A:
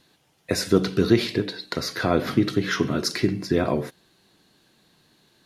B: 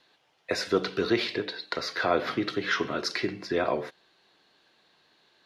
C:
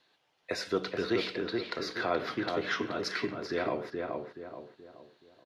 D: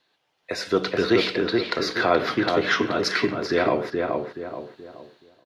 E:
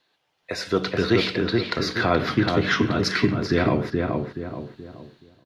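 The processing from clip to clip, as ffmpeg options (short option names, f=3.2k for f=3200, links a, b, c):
-filter_complex "[0:a]acrossover=split=410 5100:gain=0.178 1 0.126[a][b][c];[a][b][c]amix=inputs=3:normalize=0"
-filter_complex "[0:a]asplit=2[a][b];[b]adelay=426,lowpass=f=1.6k:p=1,volume=-3dB,asplit=2[c][d];[d]adelay=426,lowpass=f=1.6k:p=1,volume=0.41,asplit=2[e][f];[f]adelay=426,lowpass=f=1.6k:p=1,volume=0.41,asplit=2[g][h];[h]adelay=426,lowpass=f=1.6k:p=1,volume=0.41,asplit=2[i][j];[j]adelay=426,lowpass=f=1.6k:p=1,volume=0.41[k];[a][c][e][g][i][k]amix=inputs=6:normalize=0,volume=-5.5dB"
-af "dynaudnorm=f=420:g=3:m=10.5dB"
-af "asubboost=boost=6.5:cutoff=210"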